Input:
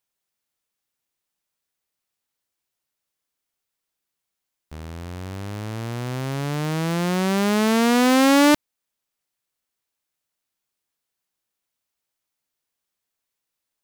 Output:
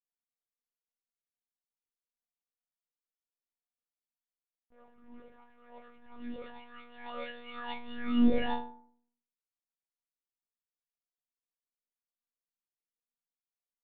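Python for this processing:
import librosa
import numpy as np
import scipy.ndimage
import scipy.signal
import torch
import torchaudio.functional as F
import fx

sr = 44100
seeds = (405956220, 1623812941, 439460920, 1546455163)

y = fx.stiff_resonator(x, sr, f0_hz=260.0, decay_s=0.72, stiffness=0.03)
y = fx.env_lowpass(y, sr, base_hz=1000.0, full_db=-36.5)
y = fx.lpc_monotone(y, sr, seeds[0], pitch_hz=240.0, order=10)
y = y * 10.0 ** (1.5 / 20.0)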